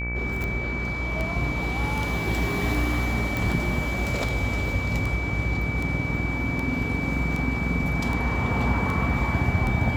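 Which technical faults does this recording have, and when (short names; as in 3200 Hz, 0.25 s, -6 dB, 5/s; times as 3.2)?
buzz 60 Hz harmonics 37 -30 dBFS
tick 78 rpm -17 dBFS
tone 2300 Hz -30 dBFS
3.37 pop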